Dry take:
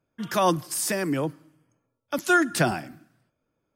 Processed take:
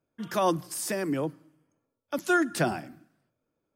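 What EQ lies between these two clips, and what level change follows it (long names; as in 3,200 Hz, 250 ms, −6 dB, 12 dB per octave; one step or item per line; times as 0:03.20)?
parametric band 400 Hz +4 dB 2.4 octaves
mains-hum notches 60/120/180 Hz
−6.0 dB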